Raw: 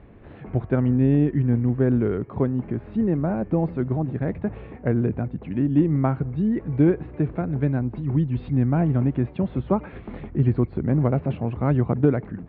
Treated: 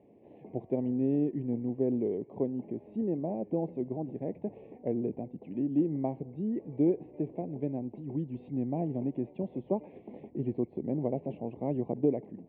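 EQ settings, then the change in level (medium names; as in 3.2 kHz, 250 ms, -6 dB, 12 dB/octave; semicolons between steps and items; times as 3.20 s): band-pass 270–2000 Hz; Butterworth band-stop 1.4 kHz, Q 0.78; distance through air 170 m; -5.0 dB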